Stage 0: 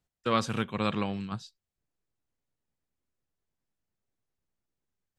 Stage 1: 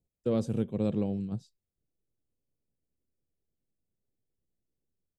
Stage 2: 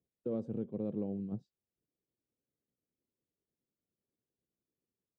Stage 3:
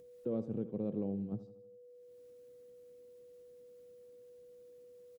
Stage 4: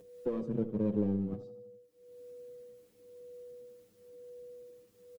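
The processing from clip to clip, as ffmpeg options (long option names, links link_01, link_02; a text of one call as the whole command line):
ffmpeg -i in.wav -af "firequalizer=gain_entry='entry(490,0);entry(1100,-23);entry(8300,-9)':delay=0.05:min_phase=1,volume=2dB" out.wav
ffmpeg -i in.wav -af "alimiter=level_in=0.5dB:limit=-24dB:level=0:latency=1:release=396,volume=-0.5dB,bandpass=frequency=350:width_type=q:width=0.73:csg=0" out.wav
ffmpeg -i in.wav -af "acompressor=mode=upward:threshold=-59dB:ratio=2.5,aeval=exprs='val(0)+0.002*sin(2*PI*490*n/s)':channel_layout=same,aecho=1:1:80|160|240|320|400:0.178|0.0942|0.05|0.0265|0.014" out.wav
ffmpeg -i in.wav -filter_complex "[0:a]asplit=2[link_01][link_02];[link_02]aeval=exprs='clip(val(0),-1,0.00668)':channel_layout=same,volume=-4dB[link_03];[link_01][link_03]amix=inputs=2:normalize=0,asplit=2[link_04][link_05];[link_05]adelay=7.1,afreqshift=-1[link_06];[link_04][link_06]amix=inputs=2:normalize=1,volume=4dB" out.wav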